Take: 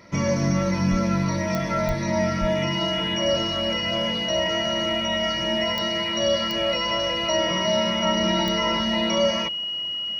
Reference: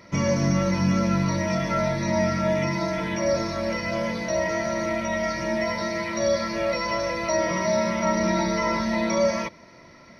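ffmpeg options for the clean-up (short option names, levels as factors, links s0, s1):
-filter_complex "[0:a]adeclick=t=4,bandreject=f=2900:w=30,asplit=3[s0][s1][s2];[s0]afade=t=out:st=0.9:d=0.02[s3];[s1]highpass=f=140:w=0.5412,highpass=f=140:w=1.3066,afade=t=in:st=0.9:d=0.02,afade=t=out:st=1.02:d=0.02[s4];[s2]afade=t=in:st=1.02:d=0.02[s5];[s3][s4][s5]amix=inputs=3:normalize=0,asplit=3[s6][s7][s8];[s6]afade=t=out:st=1.87:d=0.02[s9];[s7]highpass=f=140:w=0.5412,highpass=f=140:w=1.3066,afade=t=in:st=1.87:d=0.02,afade=t=out:st=1.99:d=0.02[s10];[s8]afade=t=in:st=1.99:d=0.02[s11];[s9][s10][s11]amix=inputs=3:normalize=0,asplit=3[s12][s13][s14];[s12]afade=t=out:st=2.4:d=0.02[s15];[s13]highpass=f=140:w=0.5412,highpass=f=140:w=1.3066,afade=t=in:st=2.4:d=0.02,afade=t=out:st=2.52:d=0.02[s16];[s14]afade=t=in:st=2.52:d=0.02[s17];[s15][s16][s17]amix=inputs=3:normalize=0"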